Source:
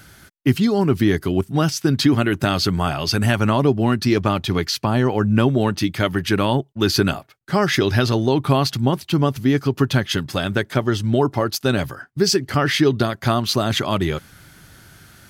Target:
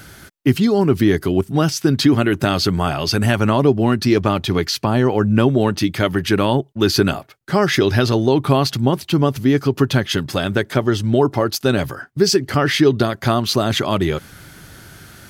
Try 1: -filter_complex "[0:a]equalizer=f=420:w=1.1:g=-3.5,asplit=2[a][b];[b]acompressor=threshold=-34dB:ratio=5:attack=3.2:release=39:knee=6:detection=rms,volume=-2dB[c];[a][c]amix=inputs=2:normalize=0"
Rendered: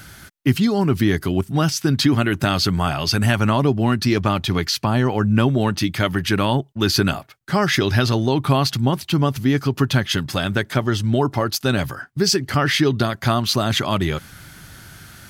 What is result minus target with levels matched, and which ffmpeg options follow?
500 Hz band -3.5 dB
-filter_complex "[0:a]equalizer=f=420:w=1.1:g=3,asplit=2[a][b];[b]acompressor=threshold=-34dB:ratio=5:attack=3.2:release=39:knee=6:detection=rms,volume=-2dB[c];[a][c]amix=inputs=2:normalize=0"

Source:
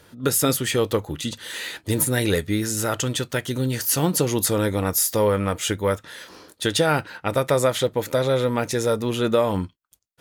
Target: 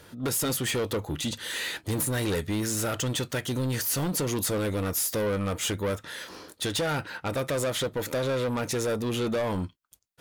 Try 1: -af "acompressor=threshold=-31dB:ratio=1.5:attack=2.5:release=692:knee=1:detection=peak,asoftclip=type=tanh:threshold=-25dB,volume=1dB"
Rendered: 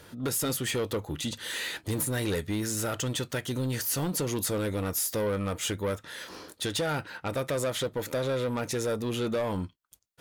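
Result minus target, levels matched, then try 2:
compressor: peak gain reduction +4 dB
-af "acompressor=threshold=-19.5dB:ratio=1.5:attack=2.5:release=692:knee=1:detection=peak,asoftclip=type=tanh:threshold=-25dB,volume=1dB"

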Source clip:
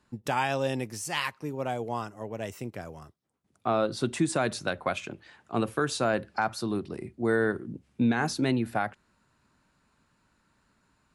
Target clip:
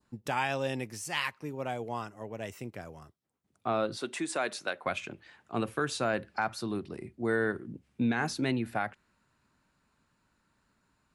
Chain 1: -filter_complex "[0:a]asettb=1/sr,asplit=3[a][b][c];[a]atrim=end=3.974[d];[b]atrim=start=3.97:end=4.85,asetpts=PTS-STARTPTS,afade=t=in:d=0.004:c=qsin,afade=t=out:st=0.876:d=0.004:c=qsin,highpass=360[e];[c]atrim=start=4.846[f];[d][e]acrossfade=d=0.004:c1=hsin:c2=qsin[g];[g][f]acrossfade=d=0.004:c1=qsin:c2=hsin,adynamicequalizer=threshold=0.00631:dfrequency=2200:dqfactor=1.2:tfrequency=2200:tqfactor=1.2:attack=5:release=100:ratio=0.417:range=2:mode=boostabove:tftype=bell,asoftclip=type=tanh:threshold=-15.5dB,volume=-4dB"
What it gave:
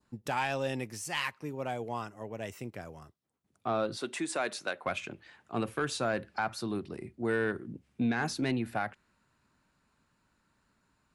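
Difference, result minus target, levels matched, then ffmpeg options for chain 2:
soft clip: distortion +21 dB
-filter_complex "[0:a]asettb=1/sr,asplit=3[a][b][c];[a]atrim=end=3.974[d];[b]atrim=start=3.97:end=4.85,asetpts=PTS-STARTPTS,afade=t=in:d=0.004:c=qsin,afade=t=out:st=0.876:d=0.004:c=qsin,highpass=360[e];[c]atrim=start=4.846[f];[d][e]acrossfade=d=0.004:c1=hsin:c2=qsin[g];[g][f]acrossfade=d=0.004:c1=qsin:c2=hsin,adynamicequalizer=threshold=0.00631:dfrequency=2200:dqfactor=1.2:tfrequency=2200:tqfactor=1.2:attack=5:release=100:ratio=0.417:range=2:mode=boostabove:tftype=bell,asoftclip=type=tanh:threshold=-4dB,volume=-4dB"

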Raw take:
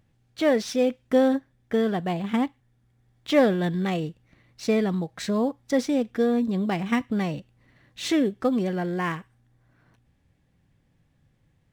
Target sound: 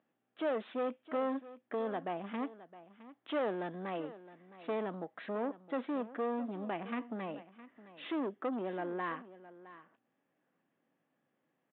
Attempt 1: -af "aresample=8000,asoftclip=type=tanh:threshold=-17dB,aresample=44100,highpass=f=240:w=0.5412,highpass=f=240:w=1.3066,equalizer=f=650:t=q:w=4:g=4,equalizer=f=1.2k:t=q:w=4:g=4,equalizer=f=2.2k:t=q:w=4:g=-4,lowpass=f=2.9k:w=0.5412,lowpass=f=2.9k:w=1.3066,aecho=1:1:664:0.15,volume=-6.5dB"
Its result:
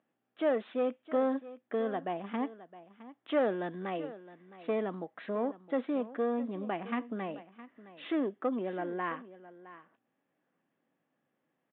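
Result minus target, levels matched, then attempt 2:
soft clip: distortion -7 dB
-af "aresample=8000,asoftclip=type=tanh:threshold=-25dB,aresample=44100,highpass=f=240:w=0.5412,highpass=f=240:w=1.3066,equalizer=f=650:t=q:w=4:g=4,equalizer=f=1.2k:t=q:w=4:g=4,equalizer=f=2.2k:t=q:w=4:g=-4,lowpass=f=2.9k:w=0.5412,lowpass=f=2.9k:w=1.3066,aecho=1:1:664:0.15,volume=-6.5dB"

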